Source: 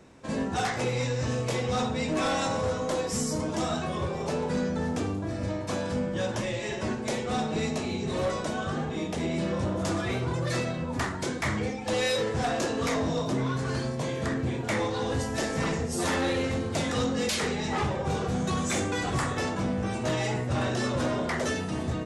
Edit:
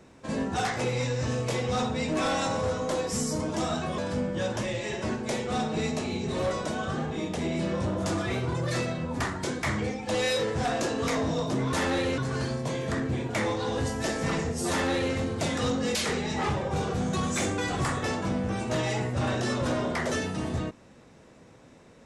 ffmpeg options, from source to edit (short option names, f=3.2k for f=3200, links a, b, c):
-filter_complex "[0:a]asplit=4[a][b][c][d];[a]atrim=end=3.982[e];[b]atrim=start=5.768:end=13.522[f];[c]atrim=start=16.038:end=16.492[g];[d]atrim=start=13.518[h];[e][f]acrossfade=d=0.004:c1=hsin:c2=hsin[i];[i][g]acrossfade=d=0.004:c1=hsin:c2=hsin[j];[j][h]acrossfade=d=0.004:c1=hsin:c2=hsin"